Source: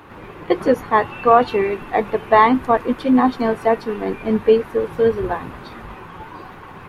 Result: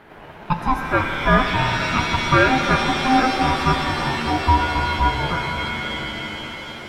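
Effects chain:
ring modulation 520 Hz
reverb with rising layers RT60 4 s, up +7 semitones, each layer −2 dB, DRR 4.5 dB
level −1 dB

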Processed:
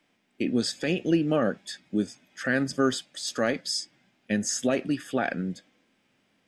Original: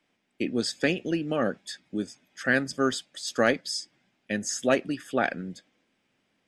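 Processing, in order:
brickwall limiter −17.5 dBFS, peak gain reduction 8.5 dB
harmonic and percussive parts rebalanced harmonic +6 dB

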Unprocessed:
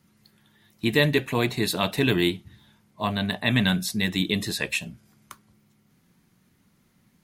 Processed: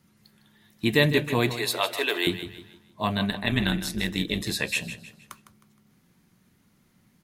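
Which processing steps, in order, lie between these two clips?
0:01.53–0:02.27: high-pass filter 430 Hz 24 dB per octave
0:03.30–0:04.47: amplitude modulation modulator 150 Hz, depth 55%
repeating echo 156 ms, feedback 37%, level −12 dB

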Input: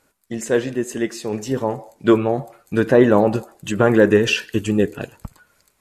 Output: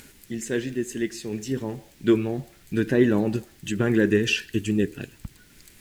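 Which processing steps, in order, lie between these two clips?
upward compression, threshold −29 dBFS
background noise pink −50 dBFS
flat-topped bell 800 Hz −11.5 dB
level −4 dB

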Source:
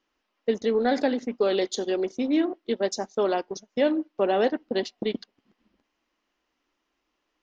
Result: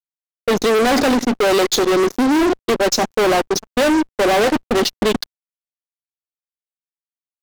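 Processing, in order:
fuzz pedal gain 37 dB, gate −45 dBFS
bit reduction 11 bits

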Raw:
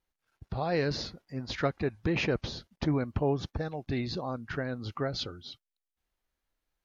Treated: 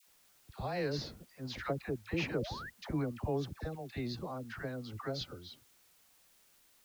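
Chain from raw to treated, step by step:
bit-depth reduction 10 bits, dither triangular
all-pass dispersion lows, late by 77 ms, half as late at 860 Hz
sound drawn into the spectrogram rise, 0:02.26–0:02.70, 240–2,000 Hz −39 dBFS
level −6.5 dB

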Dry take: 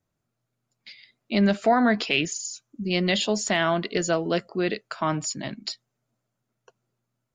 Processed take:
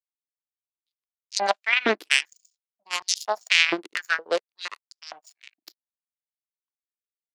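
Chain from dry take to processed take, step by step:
power curve on the samples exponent 3
high-pass on a step sequencer 4.3 Hz 330–5,300 Hz
level +7 dB

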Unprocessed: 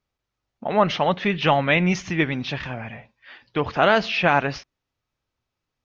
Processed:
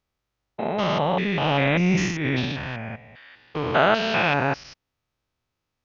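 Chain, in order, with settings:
spectrum averaged block by block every 200 ms
0:01.25–0:02.54: transient designer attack −12 dB, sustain +8 dB
level +2.5 dB

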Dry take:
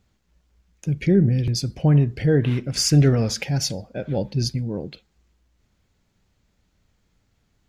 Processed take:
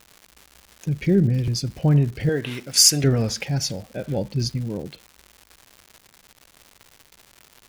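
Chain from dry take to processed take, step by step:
0:02.29–0:03.04: RIAA equalisation recording
surface crackle 250 per second −33 dBFS
level −1 dB

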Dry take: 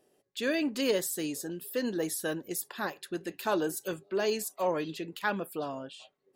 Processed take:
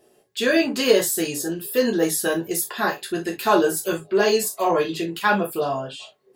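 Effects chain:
reverb whose tail is shaped and stops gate 90 ms falling, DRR −1.5 dB
level +7.5 dB

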